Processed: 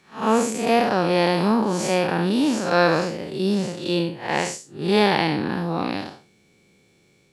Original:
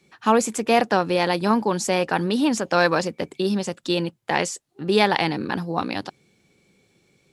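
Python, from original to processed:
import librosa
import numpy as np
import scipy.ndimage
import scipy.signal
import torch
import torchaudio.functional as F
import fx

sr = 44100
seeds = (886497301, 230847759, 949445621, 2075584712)

y = fx.spec_blur(x, sr, span_ms=158.0)
y = F.gain(torch.from_numpy(y), 4.0).numpy()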